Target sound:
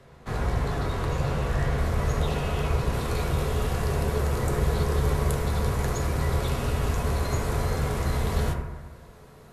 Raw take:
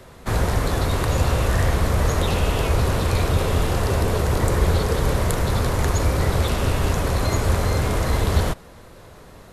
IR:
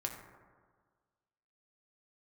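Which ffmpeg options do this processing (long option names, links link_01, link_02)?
-filter_complex "[0:a]asetnsamples=nb_out_samples=441:pad=0,asendcmd='1.78 highshelf g -4;2.93 highshelf g 2.5',highshelf=frequency=7500:gain=-10[link_01];[1:a]atrim=start_sample=2205,asetrate=52920,aresample=44100[link_02];[link_01][link_02]afir=irnorm=-1:irlink=0,volume=-5.5dB"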